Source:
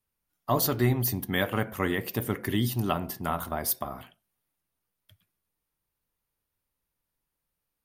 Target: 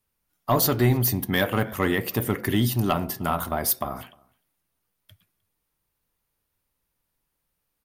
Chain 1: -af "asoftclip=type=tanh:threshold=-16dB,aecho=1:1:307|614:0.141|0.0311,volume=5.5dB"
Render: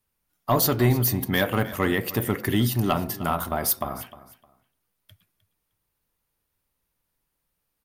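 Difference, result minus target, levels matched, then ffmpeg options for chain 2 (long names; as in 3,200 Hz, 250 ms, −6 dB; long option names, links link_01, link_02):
echo-to-direct +11 dB
-af "asoftclip=type=tanh:threshold=-16dB,aecho=1:1:307:0.0398,volume=5.5dB"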